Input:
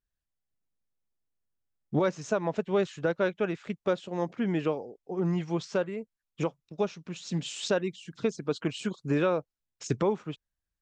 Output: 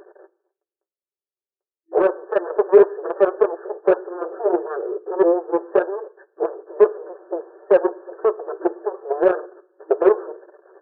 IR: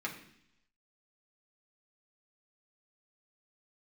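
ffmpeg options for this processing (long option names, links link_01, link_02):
-filter_complex "[0:a]aeval=exprs='val(0)+0.5*0.0355*sgn(val(0))':channel_layout=same,tiltshelf=frequency=1400:gain=9.5,aecho=1:1:5.2:0.67,flanger=delay=6.5:depth=8.8:regen=44:speed=1.7:shape=sinusoidal,aeval=exprs='0.562*(cos(1*acos(clip(val(0)/0.562,-1,1)))-cos(1*PI/2))+0.141*(cos(7*acos(clip(val(0)/0.562,-1,1)))-cos(7*PI/2))':channel_layout=same,asplit=2[link_01][link_02];[1:a]atrim=start_sample=2205,lowpass=frequency=1600:width=0.5412,lowpass=frequency=1600:width=1.3066[link_03];[link_02][link_03]afir=irnorm=-1:irlink=0,volume=-14dB[link_04];[link_01][link_04]amix=inputs=2:normalize=0,afftfilt=real='re*between(b*sr/4096,330,1800)':imag='im*between(b*sr/4096,330,1800)':win_size=4096:overlap=0.75,acontrast=81,equalizer=frequency=460:width=1.8:gain=12,volume=-9.5dB"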